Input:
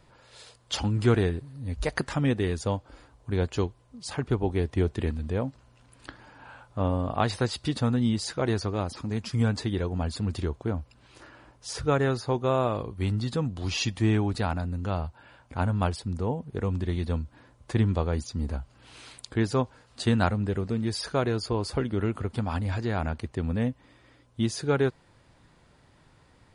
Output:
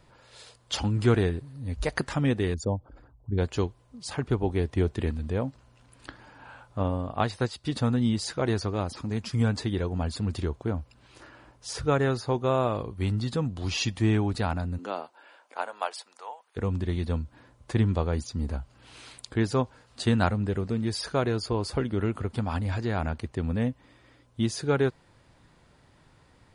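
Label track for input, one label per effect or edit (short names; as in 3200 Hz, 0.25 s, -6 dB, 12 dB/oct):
2.540000	3.380000	formant sharpening exponent 2
6.830000	7.720000	upward expander, over -38 dBFS
14.770000	16.560000	HPF 240 Hz -> 980 Hz 24 dB/oct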